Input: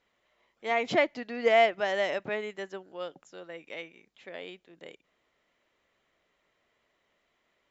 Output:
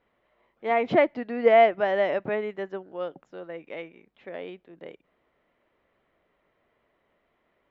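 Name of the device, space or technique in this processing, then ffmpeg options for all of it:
phone in a pocket: -af "lowpass=3400,highshelf=frequency=2000:gain=-12,volume=6.5dB"

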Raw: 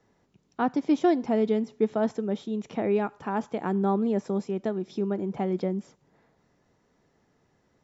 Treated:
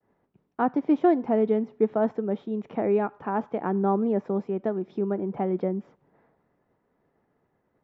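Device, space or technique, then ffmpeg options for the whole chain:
hearing-loss simulation: -af "lowpass=2200,equalizer=frequency=650:width=0.32:gain=5.5,agate=range=-33dB:threshold=-59dB:ratio=3:detection=peak,volume=-3dB"

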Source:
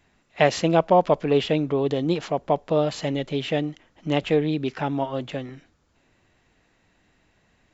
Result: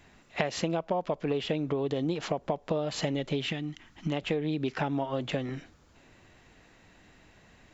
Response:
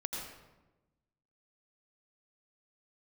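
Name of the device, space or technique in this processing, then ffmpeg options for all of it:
serial compression, leveller first: -filter_complex "[0:a]acompressor=threshold=-22dB:ratio=2,acompressor=threshold=-33dB:ratio=6,asettb=1/sr,asplit=3[link_01][link_02][link_03];[link_01]atrim=end=3.464[link_04];[link_02]atrim=start=3.46:end=4.12,asetpts=PTS-STARTPTS,afade=type=in:duration=0.004:curve=qsin,afade=type=out:start_time=0.656:duration=0.004:curve=qsin,equalizer=frequency=540:width_type=o:width=0.85:gain=-14.5[link_05];[link_03]atrim=start=4.116[link_06];[link_04][link_05]acrossfade=duration=0.004:curve1=hsin:curve2=qsin[link_07];[link_07][link_06]acrossfade=duration=0.004:curve1=qsin:curve2=hsin,volume=6dB"

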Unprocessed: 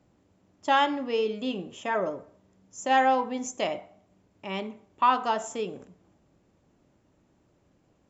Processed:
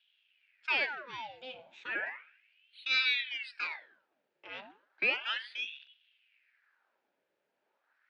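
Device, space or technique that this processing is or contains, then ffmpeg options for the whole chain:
voice changer toy: -af "aeval=exprs='val(0)*sin(2*PI*1700*n/s+1700*0.85/0.34*sin(2*PI*0.34*n/s))':channel_layout=same,highpass=450,equalizer=frequency=470:width_type=q:width=4:gain=-4,equalizer=frequency=720:width_type=q:width=4:gain=-6,equalizer=frequency=1100:width_type=q:width=4:gain=-9,equalizer=frequency=1600:width_type=q:width=4:gain=6,equalizer=frequency=2500:width_type=q:width=4:gain=4,lowpass=frequency=4800:width=0.5412,lowpass=frequency=4800:width=1.3066,volume=-6.5dB"

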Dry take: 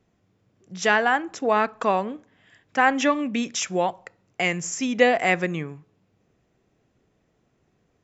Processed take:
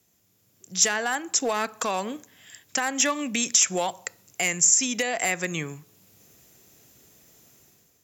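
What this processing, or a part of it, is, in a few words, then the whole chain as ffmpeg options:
FM broadcast chain: -filter_complex "[0:a]highpass=50,dynaudnorm=framelen=110:gausssize=9:maxgain=11dB,acrossover=split=560|2600|6200[link_01][link_02][link_03][link_04];[link_01]acompressor=threshold=-21dB:ratio=4[link_05];[link_02]acompressor=threshold=-16dB:ratio=4[link_06];[link_03]acompressor=threshold=-38dB:ratio=4[link_07];[link_04]acompressor=threshold=-33dB:ratio=4[link_08];[link_05][link_06][link_07][link_08]amix=inputs=4:normalize=0,aemphasis=mode=production:type=75fm,alimiter=limit=-11.5dB:level=0:latency=1:release=303,asoftclip=type=hard:threshold=-13.5dB,lowpass=frequency=15000:width=0.5412,lowpass=frequency=15000:width=1.3066,aemphasis=mode=production:type=75fm,volume=-4dB"

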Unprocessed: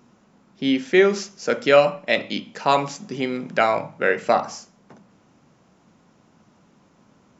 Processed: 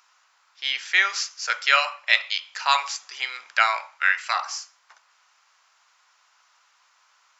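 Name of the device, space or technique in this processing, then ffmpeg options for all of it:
headphones lying on a table: -filter_complex "[0:a]highpass=frequency=1100:width=0.5412,highpass=frequency=1100:width=1.3066,equalizer=frequency=4600:width_type=o:width=0.4:gain=4,asettb=1/sr,asplit=3[link_01][link_02][link_03];[link_01]atrim=end=3.964[link_04];[link_02]atrim=start=3.96:end=4.37,asetpts=PTS-STARTPTS,afade=type=in:duration=0.004:curve=qsin,afade=type=out:start_time=0.406:duration=0.004:curve=qsin,highpass=910[link_05];[link_03]atrim=start=4.366[link_06];[link_04][link_05]acrossfade=duration=0.004:curve1=hsin:curve2=qsin[link_07];[link_07][link_06]acrossfade=duration=0.004:curve1=qsin:curve2=hsin,volume=4dB"

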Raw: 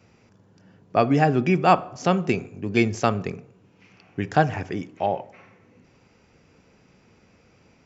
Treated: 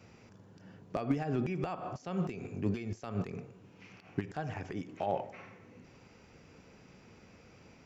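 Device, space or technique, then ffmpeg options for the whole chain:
de-esser from a sidechain: -filter_complex "[0:a]asplit=2[link_01][link_02];[link_02]highpass=5600,apad=whole_len=346477[link_03];[link_01][link_03]sidechaincompress=threshold=-60dB:ratio=5:attack=0.61:release=77"

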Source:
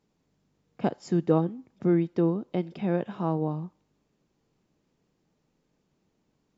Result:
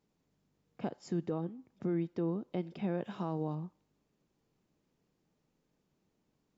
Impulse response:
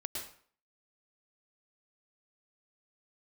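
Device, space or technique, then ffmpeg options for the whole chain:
stacked limiters: -filter_complex "[0:a]asettb=1/sr,asplit=3[link_01][link_02][link_03];[link_01]atrim=end=3.044[link_04];[link_02]atrim=start=3.04:end=3.55,asetpts=PTS-STARTPTS,afade=type=in:duration=0.004:curve=qsin,afade=type=out:start_time=0.506:duration=0.004:curve=qsin,highshelf=frequency=3200:gain=10.5[link_05];[link_03]atrim=start=3.546[link_06];[link_04][link_05]acrossfade=duration=0.004:curve1=hsin:curve2=qsin[link_07];[link_07][link_06]acrossfade=duration=0.004:curve1=qsin:curve2=hsin,alimiter=limit=-16dB:level=0:latency=1:release=437,alimiter=limit=-20dB:level=0:latency=1:release=65,volume=-5dB"

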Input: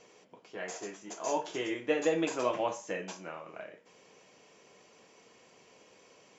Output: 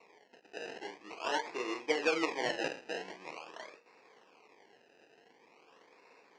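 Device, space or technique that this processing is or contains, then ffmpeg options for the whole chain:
circuit-bent sampling toy: -af "acrusher=samples=27:mix=1:aa=0.000001:lfo=1:lforange=27:lforate=0.45,highpass=440,equalizer=frequency=600:width_type=q:width=4:gain=-8,equalizer=frequency=1400:width_type=q:width=4:gain=-6,equalizer=frequency=2500:width_type=q:width=4:gain=6,equalizer=frequency=3600:width_type=q:width=4:gain=-9,lowpass=frequency=5600:width=0.5412,lowpass=frequency=5600:width=1.3066,volume=2dB"

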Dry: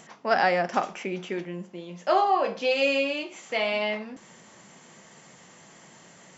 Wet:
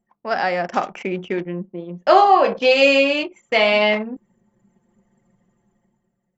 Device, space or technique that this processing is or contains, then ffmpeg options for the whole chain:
voice memo with heavy noise removal: -af "anlmdn=1.58,dynaudnorm=framelen=230:gausssize=7:maxgain=14dB"

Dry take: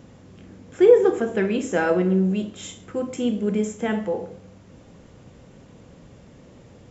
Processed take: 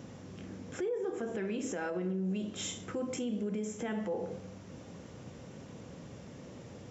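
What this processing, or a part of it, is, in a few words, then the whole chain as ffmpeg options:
broadcast voice chain: -af "highpass=83,deesser=0.75,acompressor=threshold=-30dB:ratio=5,equalizer=frequency=5700:width_type=o:width=0.23:gain=5,alimiter=level_in=3.5dB:limit=-24dB:level=0:latency=1:release=62,volume=-3.5dB"

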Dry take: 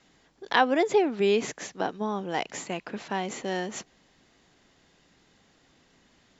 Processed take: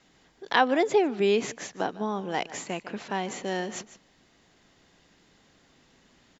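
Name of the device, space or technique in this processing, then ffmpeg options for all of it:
ducked delay: -filter_complex "[0:a]asplit=3[link_01][link_02][link_03];[link_02]adelay=150,volume=-4.5dB[link_04];[link_03]apad=whole_len=288426[link_05];[link_04][link_05]sidechaincompress=threshold=-37dB:ratio=8:attack=36:release=1450[link_06];[link_01][link_06]amix=inputs=2:normalize=0"

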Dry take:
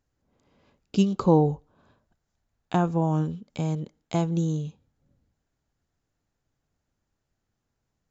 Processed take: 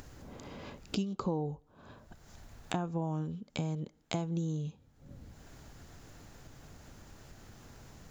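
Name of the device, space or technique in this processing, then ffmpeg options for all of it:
upward and downward compression: -af "acompressor=mode=upward:threshold=-32dB:ratio=2.5,acompressor=threshold=-33dB:ratio=5,volume=1dB"

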